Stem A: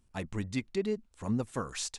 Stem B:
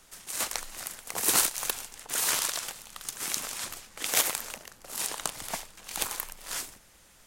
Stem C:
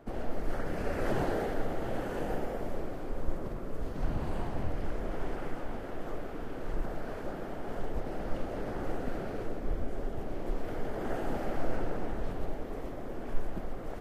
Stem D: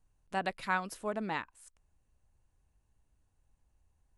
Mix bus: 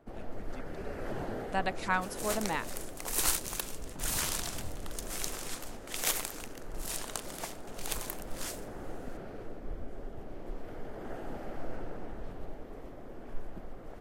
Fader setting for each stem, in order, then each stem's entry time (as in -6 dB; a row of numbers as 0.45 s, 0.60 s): -16.5 dB, -6.0 dB, -7.0 dB, +1.5 dB; 0.00 s, 1.90 s, 0.00 s, 1.20 s